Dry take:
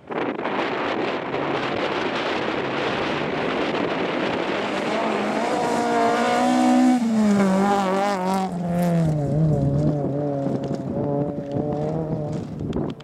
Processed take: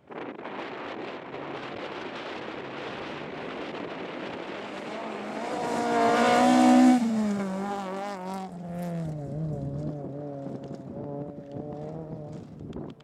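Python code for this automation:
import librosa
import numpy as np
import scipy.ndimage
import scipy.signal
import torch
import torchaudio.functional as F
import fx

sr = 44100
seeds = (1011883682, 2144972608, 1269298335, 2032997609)

y = fx.gain(x, sr, db=fx.line((5.22, -12.5), (6.25, -1.0), (6.89, -1.0), (7.44, -12.5)))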